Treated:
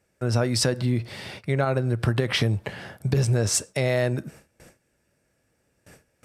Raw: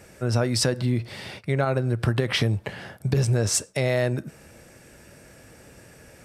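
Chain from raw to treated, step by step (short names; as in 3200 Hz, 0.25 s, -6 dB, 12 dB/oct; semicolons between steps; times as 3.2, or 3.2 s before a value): gate with hold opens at -37 dBFS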